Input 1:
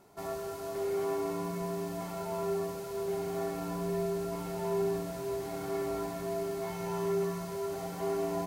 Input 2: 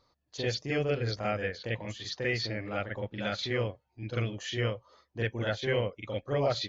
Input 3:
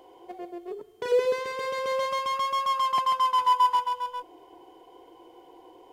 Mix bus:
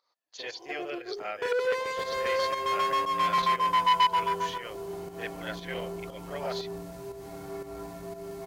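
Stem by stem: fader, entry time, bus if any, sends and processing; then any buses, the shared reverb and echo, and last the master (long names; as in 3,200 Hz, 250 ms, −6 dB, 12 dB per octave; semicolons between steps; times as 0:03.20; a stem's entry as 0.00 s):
−4.0 dB, 1.80 s, no send, low-shelf EQ 67 Hz +11.5 dB
−1.5 dB, 0.00 s, no send, high-pass filter 670 Hz 12 dB per octave
+1.0 dB, 0.40 s, no send, no processing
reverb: not used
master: fake sidechain pumping 118 BPM, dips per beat 1, −9 dB, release 217 ms; saturating transformer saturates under 1,600 Hz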